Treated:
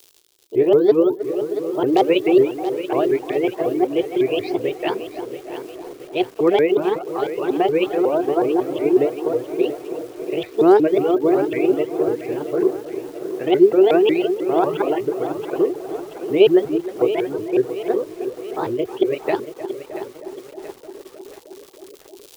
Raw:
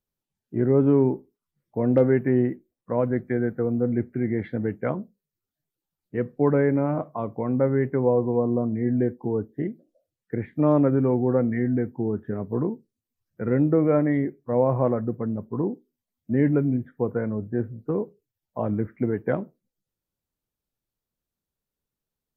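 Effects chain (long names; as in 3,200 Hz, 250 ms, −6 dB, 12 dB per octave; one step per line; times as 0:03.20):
pitch shifter swept by a sawtooth +7.5 semitones, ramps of 183 ms
notch filter 540 Hz, Q 12
tape delay 311 ms, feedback 79%, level −9 dB, low-pass 1,400 Hz
reverb reduction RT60 1.1 s
spectral tilt +3 dB per octave
surface crackle 170 per second −52 dBFS
drawn EQ curve 130 Hz 0 dB, 230 Hz −9 dB, 370 Hz +14 dB, 600 Hz +1 dB, 1,900 Hz −4 dB, 3,300 Hz +9 dB
reversed playback
upward compression, threshold −36 dBFS
reversed playback
feedback echo at a low word length 680 ms, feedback 55%, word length 7 bits, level −11.5 dB
level +4.5 dB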